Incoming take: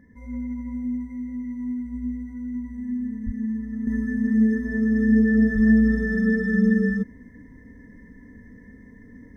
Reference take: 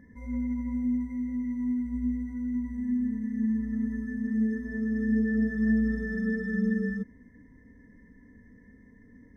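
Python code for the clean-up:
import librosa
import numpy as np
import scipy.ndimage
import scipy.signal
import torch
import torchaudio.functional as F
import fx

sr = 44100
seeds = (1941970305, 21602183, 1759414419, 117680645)

y = fx.highpass(x, sr, hz=140.0, slope=24, at=(3.25, 3.37), fade=0.02)
y = fx.highpass(y, sr, hz=140.0, slope=24, at=(5.54, 5.66), fade=0.02)
y = fx.gain(y, sr, db=fx.steps((0.0, 0.0), (3.87, -8.0)))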